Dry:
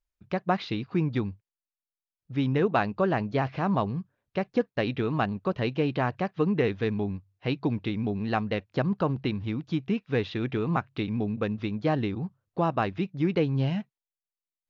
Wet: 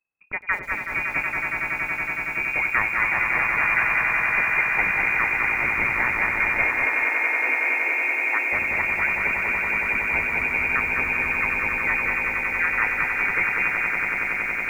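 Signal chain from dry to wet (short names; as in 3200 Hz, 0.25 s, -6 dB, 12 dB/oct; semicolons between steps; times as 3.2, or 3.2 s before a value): tilt shelf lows -4.5 dB, about 630 Hz; on a send: swelling echo 93 ms, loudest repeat 8, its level -7.5 dB; on the sum: inverted band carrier 2600 Hz; 6.64–8.53 Chebyshev high-pass 260 Hz, order 8; lo-fi delay 0.204 s, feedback 35%, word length 8-bit, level -4 dB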